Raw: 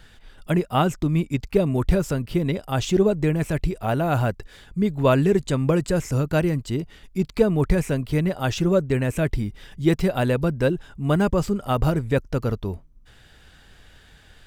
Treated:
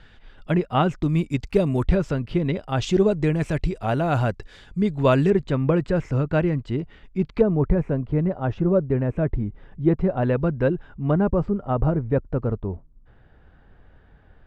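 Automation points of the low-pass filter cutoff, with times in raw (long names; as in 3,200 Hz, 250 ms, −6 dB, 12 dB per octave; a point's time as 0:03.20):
3,500 Hz
from 0:01.03 8,100 Hz
from 0:01.83 3,600 Hz
from 0:02.82 6,200 Hz
from 0:05.30 2,500 Hz
from 0:07.41 1,100 Hz
from 0:10.23 1,900 Hz
from 0:11.11 1,100 Hz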